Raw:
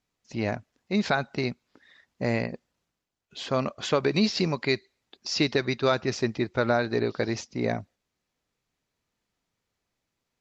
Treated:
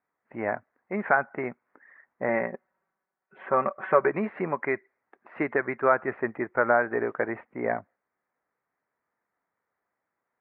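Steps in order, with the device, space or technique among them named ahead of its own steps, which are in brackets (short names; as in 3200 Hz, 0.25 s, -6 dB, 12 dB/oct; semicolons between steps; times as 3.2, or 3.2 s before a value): steep low-pass 2000 Hz 48 dB/oct; filter by subtraction (in parallel: LPF 970 Hz 12 dB/oct + phase invert); 2.28–4.09 on the sum: comb 5.3 ms, depth 66%; gain +3 dB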